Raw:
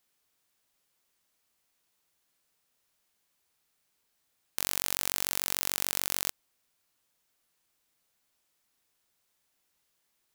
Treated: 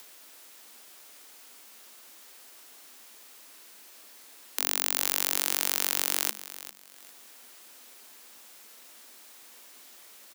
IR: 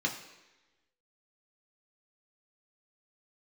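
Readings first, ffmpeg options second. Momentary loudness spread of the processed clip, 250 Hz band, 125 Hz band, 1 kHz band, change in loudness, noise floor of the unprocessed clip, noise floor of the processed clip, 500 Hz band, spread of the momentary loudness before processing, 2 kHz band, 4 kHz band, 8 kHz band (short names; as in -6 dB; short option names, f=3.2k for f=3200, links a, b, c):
15 LU, +2.5 dB, under -10 dB, +3.5 dB, +3.0 dB, -77 dBFS, -52 dBFS, +4.0 dB, 5 LU, +3.5 dB, +4.0 dB, +4.0 dB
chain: -af "acompressor=mode=upward:threshold=-37dB:ratio=2.5,aecho=1:1:399|798|1197:0.188|0.049|0.0127,afreqshift=210,volume=3.5dB"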